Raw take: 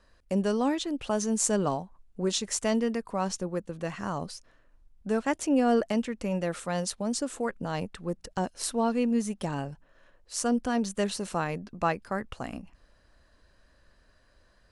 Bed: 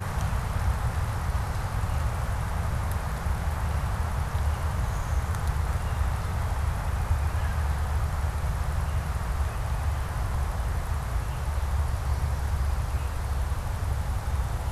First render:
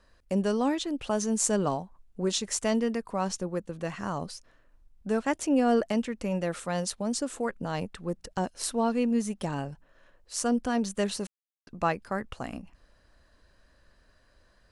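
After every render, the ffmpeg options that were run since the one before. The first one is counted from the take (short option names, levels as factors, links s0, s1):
-filter_complex "[0:a]asplit=3[s0][s1][s2];[s0]atrim=end=11.27,asetpts=PTS-STARTPTS,afade=t=out:st=11.266:d=0.004:c=hsin[s3];[s1]atrim=start=11.27:end=11.67,asetpts=PTS-STARTPTS,volume=0[s4];[s2]atrim=start=11.67,asetpts=PTS-STARTPTS,afade=t=in:d=0.004:c=hsin[s5];[s3][s4][s5]concat=n=3:v=0:a=1"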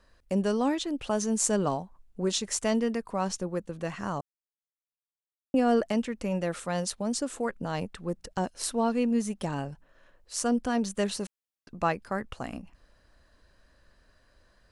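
-filter_complex "[0:a]asplit=3[s0][s1][s2];[s0]atrim=end=4.21,asetpts=PTS-STARTPTS,afade=t=out:st=4.206:d=0.004:c=hsin[s3];[s1]atrim=start=4.21:end=5.54,asetpts=PTS-STARTPTS,volume=0[s4];[s2]atrim=start=5.54,asetpts=PTS-STARTPTS,afade=t=in:d=0.004:c=hsin[s5];[s3][s4][s5]concat=n=3:v=0:a=1"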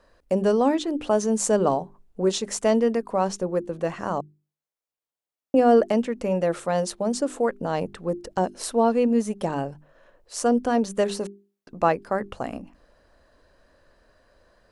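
-af "equalizer=f=520:w=0.55:g=9,bandreject=f=50:t=h:w=6,bandreject=f=100:t=h:w=6,bandreject=f=150:t=h:w=6,bandreject=f=200:t=h:w=6,bandreject=f=250:t=h:w=6,bandreject=f=300:t=h:w=6,bandreject=f=350:t=h:w=6,bandreject=f=400:t=h:w=6"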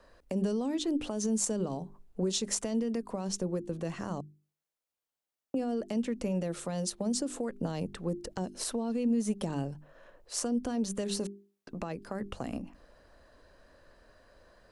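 -filter_complex "[0:a]alimiter=limit=0.112:level=0:latency=1:release=115,acrossover=split=320|3000[s0][s1][s2];[s1]acompressor=threshold=0.0112:ratio=6[s3];[s0][s3][s2]amix=inputs=3:normalize=0"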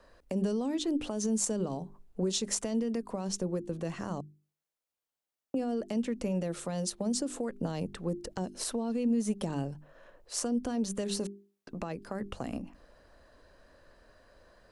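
-af anull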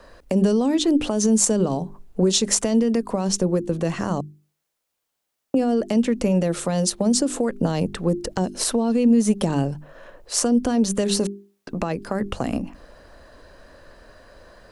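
-af "volume=3.98"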